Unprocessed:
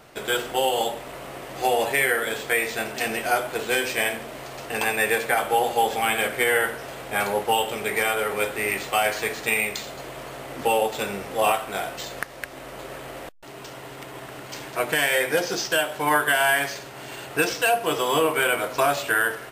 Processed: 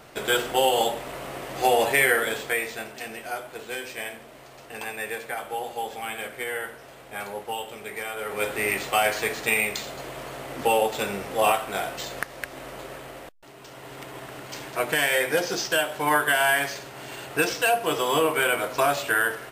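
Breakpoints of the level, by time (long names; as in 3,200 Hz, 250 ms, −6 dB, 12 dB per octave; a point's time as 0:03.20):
0:02.18 +1.5 dB
0:03.05 −10 dB
0:08.11 −10 dB
0:08.51 0 dB
0:12.65 0 dB
0:13.58 −7 dB
0:13.96 −1 dB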